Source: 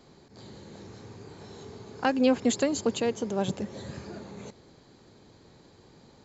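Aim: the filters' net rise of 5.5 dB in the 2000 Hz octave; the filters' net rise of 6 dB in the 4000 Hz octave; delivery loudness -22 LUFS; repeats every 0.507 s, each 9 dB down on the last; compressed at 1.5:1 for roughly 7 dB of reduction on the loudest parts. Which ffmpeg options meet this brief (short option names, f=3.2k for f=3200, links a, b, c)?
-af "equalizer=f=2k:t=o:g=6,equalizer=f=4k:t=o:g=5.5,acompressor=threshold=-38dB:ratio=1.5,aecho=1:1:507|1014|1521|2028:0.355|0.124|0.0435|0.0152,volume=13dB"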